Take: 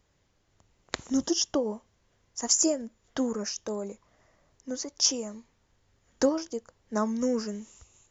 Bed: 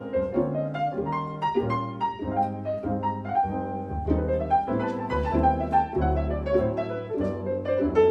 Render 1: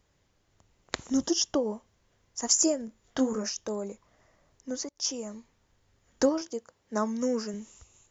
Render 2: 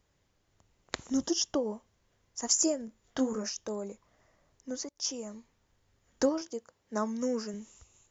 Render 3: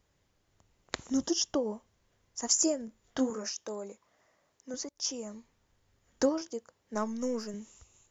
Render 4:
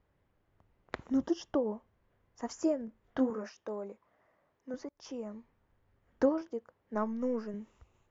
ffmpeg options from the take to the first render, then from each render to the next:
-filter_complex "[0:a]asettb=1/sr,asplit=3[a][b][c];[a]atrim=end=2.854[d];[b]atrim=start=2.85:end=3.5,asetpts=PTS-STARTPTS,afade=t=in:d=0.004:c=qsin,afade=t=out:st=0.646:d=0.004:c=qsin,asplit=2[e][f];[f]adelay=23,volume=-6dB[g];[e][g]amix=inputs=2:normalize=0,atrim=end_sample=28665[h];[c]atrim=start=3.496[i];[d][h]acrossfade=d=0.004:c1=hsin:c2=qsin[j];[j][i]acrossfade=d=0.004:c1=qsin:c2=hsin,asettb=1/sr,asplit=3[k][l][m];[k]atrim=end=6.414[n];[l]atrim=start=6.41:end=7.54,asetpts=PTS-STARTPTS,afade=t=in:d=0.004:c=qsin,afade=t=out:st=1.126:d=0.004:c=qsin,highpass=f=170:p=1[o];[m]atrim=start=7.536[p];[n][o]acrossfade=d=0.004:c1=hsin:c2=qsin[q];[q][p]acrossfade=d=0.004:c1=qsin:c2=hsin,asplit=2[r][s];[r]atrim=end=4.89,asetpts=PTS-STARTPTS,afade=t=out:st=4.886:d=0.004:c=hsin:silence=0.105925[t];[s]atrim=start=4.89,asetpts=PTS-STARTPTS,afade=t=in:d=0.43:silence=0.105925[u];[t][u]concat=n=2:v=0:a=1"
-af "volume=-3dB"
-filter_complex "[0:a]asettb=1/sr,asplit=3[a][b][c];[a]atrim=end=3.304[d];[b]atrim=start=3.3:end=4.74,asetpts=PTS-STARTPTS,afade=t=in:d=0.004:c=qsin,afade=t=out:st=1.436:d=0.004:c=qsin,highpass=f=350:p=1[e];[c]atrim=start=4.736[f];[d][e]acrossfade=d=0.004:c1=hsin:c2=qsin[g];[g][f]acrossfade=d=0.004:c1=qsin:c2=hsin,asettb=1/sr,asplit=3[h][i][j];[h]atrim=end=6.944[k];[i]atrim=start=6.94:end=7.54,asetpts=PTS-STARTPTS,afade=t=in:d=0.004:c=qsin,afade=t=out:st=0.596:d=0.004:c=qsin,aeval=exprs='if(lt(val(0),0),0.708*val(0),val(0))':c=same[l];[j]atrim=start=7.536[m];[k][l]acrossfade=d=0.004:c1=hsin:c2=qsin[n];[n][m]acrossfade=d=0.004:c1=qsin:c2=hsin"
-af "lowpass=1.9k"

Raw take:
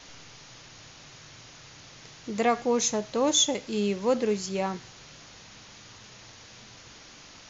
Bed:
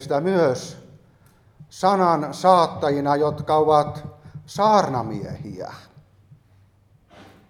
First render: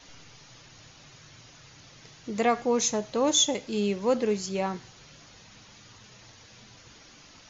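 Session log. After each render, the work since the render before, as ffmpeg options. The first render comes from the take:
-af "afftdn=nr=6:nf=-50"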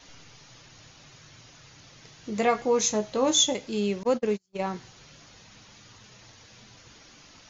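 -filter_complex "[0:a]asettb=1/sr,asplit=3[a][b][c];[a]atrim=end=2.174[d];[b]atrim=start=2.17:end=3.53,asetpts=PTS-STARTPTS,afade=t=in:d=0.004:c=qsin,afade=t=out:st=1.356:d=0.004:c=qsin,asplit=2[e][f];[f]adelay=19,volume=-7dB[g];[e][g]amix=inputs=2:normalize=0,atrim=end_sample=59976[h];[c]atrim=start=3.526[i];[d][h]acrossfade=d=0.004:c1=hsin:c2=qsin[j];[j][i]acrossfade=d=0.004:c1=qsin:c2=hsin,asettb=1/sr,asplit=3[k][l][m];[k]atrim=end=4.034[n];[l]atrim=start=4.03:end=4.67,asetpts=PTS-STARTPTS,afade=t=in:d=0.004:c=qsin,afade=t=out:st=0.636:d=0.004:c=qsin,agate=range=-41dB:threshold=-29dB:ratio=16:release=100:detection=peak[o];[m]atrim=start=4.666[p];[n][o]acrossfade=d=0.004:c1=hsin:c2=qsin[q];[q][p]acrossfade=d=0.004:c1=qsin:c2=hsin"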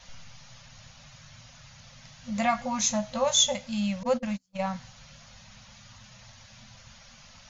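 -af "afftfilt=real='re*(1-between(b*sr/4096,250,500))':imag='im*(1-between(b*sr/4096,250,500))':win_size=4096:overlap=0.75,lowshelf=f=75:g=9.5"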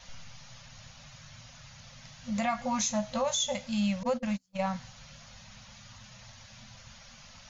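-af "alimiter=limit=-19.5dB:level=0:latency=1:release=156"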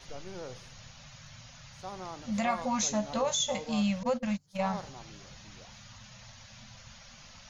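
-filter_complex "[1:a]volume=-24.5dB[a];[0:a][a]amix=inputs=2:normalize=0"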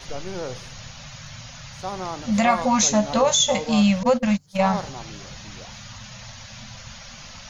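-af "volume=11dB"

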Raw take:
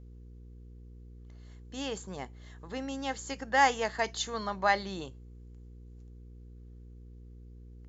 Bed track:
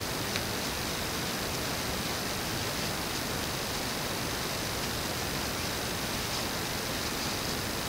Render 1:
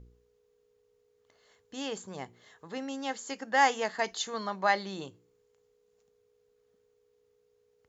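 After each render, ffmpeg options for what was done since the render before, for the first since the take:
-af "bandreject=f=60:t=h:w=4,bandreject=f=120:t=h:w=4,bandreject=f=180:t=h:w=4,bandreject=f=240:t=h:w=4,bandreject=f=300:t=h:w=4,bandreject=f=360:t=h:w=4"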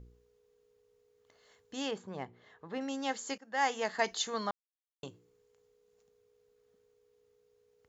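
-filter_complex "[0:a]asettb=1/sr,asplit=3[a][b][c];[a]atrim=end=1.914[d];[b]atrim=start=1.91:end=2.81,asetpts=PTS-STARTPTS,afade=t=in:d=0.004:c=qsin,afade=t=out:st=0.896:d=0.004:c=qsin,adynamicsmooth=sensitivity=2:basefreq=3.2k[e];[c]atrim=start=2.806[f];[d][e]acrossfade=d=0.004:c1=hsin:c2=qsin[g];[g][f]acrossfade=d=0.004:c1=qsin:c2=hsin,asplit=4[h][i][j][k];[h]atrim=end=3.38,asetpts=PTS-STARTPTS,afade=t=out:st=3.376:d=0.004:c=hsin:silence=0.105925[l];[i]atrim=start=3.38:end=4.51,asetpts=PTS-STARTPTS,afade=t=in:d=0.62:silence=0.105925,afade=t=out:st=1.126:d=0.004:c=hsin[m];[j]atrim=start=4.51:end=5.03,asetpts=PTS-STARTPTS,volume=0[n];[k]atrim=start=5.03,asetpts=PTS-STARTPTS,afade=t=in:d=0.004:c=hsin[o];[l][m][n][o]concat=n=4:v=0:a=1"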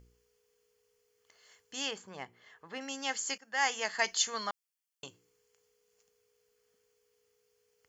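-af "tiltshelf=f=1.1k:g=-8,bandreject=f=3.8k:w=5.5"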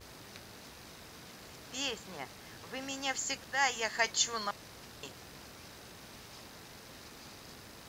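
-filter_complex "[1:a]volume=-18.5dB[a];[0:a][a]amix=inputs=2:normalize=0"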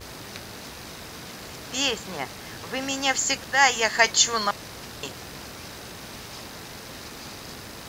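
-af "volume=11.5dB,alimiter=limit=-3dB:level=0:latency=1"

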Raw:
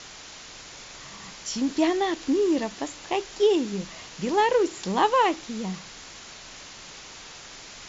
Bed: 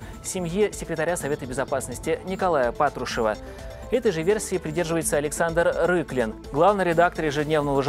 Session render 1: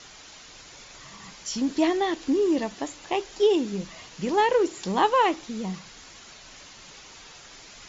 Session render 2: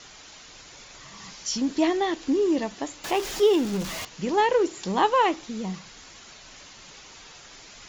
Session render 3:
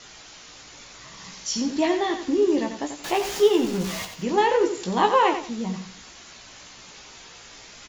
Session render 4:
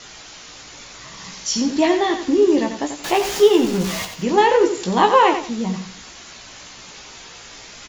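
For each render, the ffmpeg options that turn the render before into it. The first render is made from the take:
-af "afftdn=nr=6:nf=-44"
-filter_complex "[0:a]asettb=1/sr,asplit=3[a][b][c];[a]atrim=end=1.164[d];[b]atrim=start=1.16:end=1.58,asetpts=PTS-STARTPTS,afade=t=in:d=0.004:c=qsin,afade=t=out:st=0.416:d=0.004:c=qsin,lowpass=f=6.1k:t=q:w=1.6[e];[c]atrim=start=1.576[f];[d][e]acrossfade=d=0.004:c1=hsin:c2=qsin[g];[g][f]acrossfade=d=0.004:c1=qsin:c2=hsin,asettb=1/sr,asplit=3[h][i][j];[h]atrim=end=3.044[k];[i]atrim=start=3.04:end=4.05,asetpts=PTS-STARTPTS,afade=t=in:d=0.004:c=qsin,afade=t=out:st=1.006:d=0.004:c=qsin,aeval=exprs='val(0)+0.5*0.0316*sgn(val(0))':c=same[l];[j]atrim=start=4.046[m];[k][l]acrossfade=d=0.004:c1=hsin:c2=qsin[n];[n][m]acrossfade=d=0.004:c1=qsin:c2=hsin"
-filter_complex "[0:a]asplit=2[a][b];[b]adelay=17,volume=-5.5dB[c];[a][c]amix=inputs=2:normalize=0,aecho=1:1:89|178|267:0.376|0.101|0.0274"
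-af "volume=5.5dB,alimiter=limit=-3dB:level=0:latency=1"

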